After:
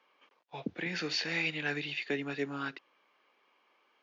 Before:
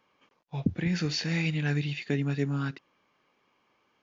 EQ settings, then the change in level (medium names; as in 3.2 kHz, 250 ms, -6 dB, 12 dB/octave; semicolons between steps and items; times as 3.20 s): high-pass 140 Hz; three-band isolator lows -17 dB, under 310 Hz, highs -16 dB, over 4.2 kHz; treble shelf 3.5 kHz +7.5 dB; 0.0 dB